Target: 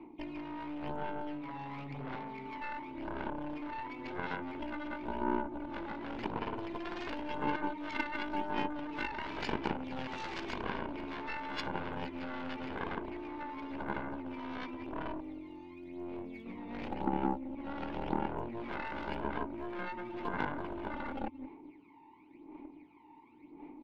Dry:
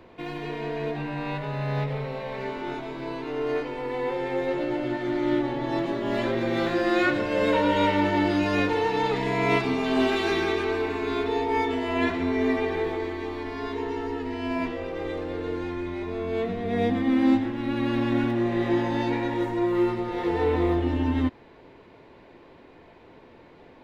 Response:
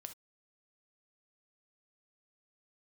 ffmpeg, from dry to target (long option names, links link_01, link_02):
-filter_complex "[0:a]asplit=3[link_01][link_02][link_03];[link_01]bandpass=frequency=300:width_type=q:width=8,volume=0dB[link_04];[link_02]bandpass=frequency=870:width_type=q:width=8,volume=-6dB[link_05];[link_03]bandpass=frequency=2240:width_type=q:width=8,volume=-9dB[link_06];[link_04][link_05][link_06]amix=inputs=3:normalize=0,aphaser=in_gain=1:out_gain=1:delay=1.1:decay=0.69:speed=0.93:type=sinusoidal,asettb=1/sr,asplit=3[link_07][link_08][link_09];[link_07]atrim=end=15.214[link_10];[link_08]atrim=start=15.21:end=16.46,asetpts=PTS-STARTPTS,afade=type=in:duration=0.004:curve=qsin,afade=type=out:start_time=1.246:duration=0.004:curve=qsin,equalizer=frequency=250:width_type=o:width=1:gain=-4,equalizer=frequency=500:width_type=o:width=1:gain=-9,equalizer=frequency=1000:width_type=o:width=1:gain=-10,equalizer=frequency=2000:width_type=o:width=1:gain=-5[link_11];[link_09]atrim=start=16.456[link_12];[link_10][link_11]acrossfade=duration=0.004:curve1=hsin:curve2=qsin[link_13];[link_13][link_12]acrossfade=duration=0.004:curve1=qsin:curve2=hsin,aecho=1:1:176:0.2,acompressor=threshold=-34dB:ratio=5,aeval=exprs='0.0562*(cos(1*acos(clip(val(0)/0.0562,-1,1)))-cos(1*PI/2))+0.0282*(cos(3*acos(clip(val(0)/0.0562,-1,1)))-cos(3*PI/2))+0.00224*(cos(4*acos(clip(val(0)/0.0562,-1,1)))-cos(4*PI/2))+0.00282*(cos(5*acos(clip(val(0)/0.0562,-1,1)))-cos(5*PI/2))':channel_layout=same,asoftclip=type=tanh:threshold=-32dB,volume=13dB"